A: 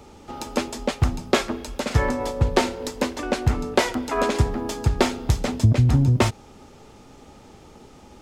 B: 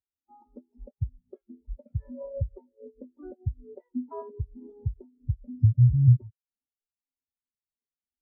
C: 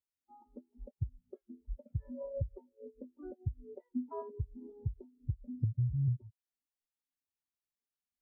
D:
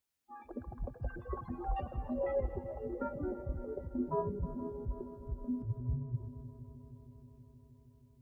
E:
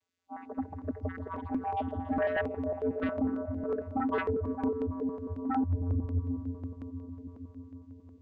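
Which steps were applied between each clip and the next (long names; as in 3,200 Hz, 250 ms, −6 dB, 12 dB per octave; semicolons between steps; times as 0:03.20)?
downward compressor 16 to 1, threshold −27 dBFS, peak gain reduction 16.5 dB; every bin expanded away from the loudest bin 4 to 1; level +2.5 dB
downward compressor 6 to 1, threshold −26 dBFS, peak gain reduction 13 dB; level −3.5 dB
compressor whose output falls as the input rises −36 dBFS, ratio −0.5; echo machine with several playback heads 158 ms, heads second and third, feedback 68%, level −15 dB; delay with pitch and tempo change per echo 103 ms, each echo +6 semitones, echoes 3, each echo −6 dB; level +3.5 dB
channel vocoder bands 16, square 88 Hz; sine wavefolder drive 11 dB, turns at −24 dBFS; notch on a step sequencer 11 Hz 210–2,400 Hz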